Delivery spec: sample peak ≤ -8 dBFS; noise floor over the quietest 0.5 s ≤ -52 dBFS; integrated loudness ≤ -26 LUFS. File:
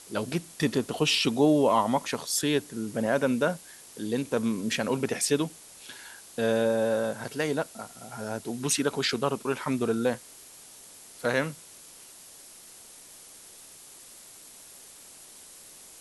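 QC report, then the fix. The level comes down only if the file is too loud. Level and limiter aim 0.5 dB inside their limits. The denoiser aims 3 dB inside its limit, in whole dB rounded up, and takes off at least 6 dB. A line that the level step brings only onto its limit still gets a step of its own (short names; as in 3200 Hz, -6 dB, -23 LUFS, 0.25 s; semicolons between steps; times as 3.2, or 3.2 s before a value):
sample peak -10.0 dBFS: OK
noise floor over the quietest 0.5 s -49 dBFS: fail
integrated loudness -27.5 LUFS: OK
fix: denoiser 6 dB, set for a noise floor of -49 dBFS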